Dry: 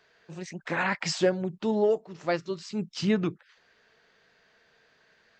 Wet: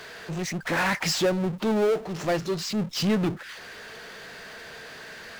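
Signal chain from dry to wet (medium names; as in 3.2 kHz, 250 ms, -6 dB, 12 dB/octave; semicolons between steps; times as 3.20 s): power-law waveshaper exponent 0.5; trim -3.5 dB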